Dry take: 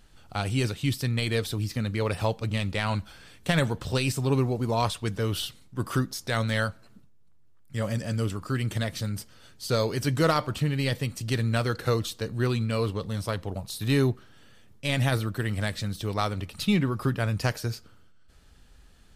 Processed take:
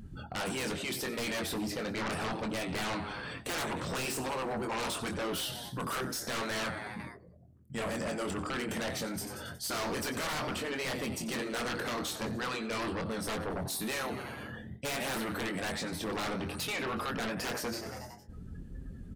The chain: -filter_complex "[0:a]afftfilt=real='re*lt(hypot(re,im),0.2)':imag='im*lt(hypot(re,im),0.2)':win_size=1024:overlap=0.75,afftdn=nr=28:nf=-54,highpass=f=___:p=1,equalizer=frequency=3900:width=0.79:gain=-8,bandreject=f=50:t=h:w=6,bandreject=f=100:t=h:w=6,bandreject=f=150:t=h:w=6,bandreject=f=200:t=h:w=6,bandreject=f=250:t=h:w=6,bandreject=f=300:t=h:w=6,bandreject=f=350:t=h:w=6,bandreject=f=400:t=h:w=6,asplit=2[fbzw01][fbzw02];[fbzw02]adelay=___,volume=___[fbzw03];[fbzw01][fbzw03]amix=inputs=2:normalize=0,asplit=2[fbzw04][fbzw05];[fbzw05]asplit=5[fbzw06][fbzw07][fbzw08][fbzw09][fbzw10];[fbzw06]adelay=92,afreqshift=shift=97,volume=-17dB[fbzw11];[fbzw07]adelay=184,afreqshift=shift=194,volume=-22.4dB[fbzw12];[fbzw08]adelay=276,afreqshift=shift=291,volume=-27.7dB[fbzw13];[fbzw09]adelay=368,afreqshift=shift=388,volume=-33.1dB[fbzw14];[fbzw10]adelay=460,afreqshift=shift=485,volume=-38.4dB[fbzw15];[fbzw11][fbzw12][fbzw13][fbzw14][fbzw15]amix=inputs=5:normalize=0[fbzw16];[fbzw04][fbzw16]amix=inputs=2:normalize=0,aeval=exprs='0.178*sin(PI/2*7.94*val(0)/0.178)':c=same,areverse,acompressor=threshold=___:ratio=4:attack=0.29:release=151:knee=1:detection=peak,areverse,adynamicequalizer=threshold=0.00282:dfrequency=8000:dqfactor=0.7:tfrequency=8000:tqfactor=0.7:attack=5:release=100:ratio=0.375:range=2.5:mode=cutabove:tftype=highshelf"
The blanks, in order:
150, 23, -7dB, -36dB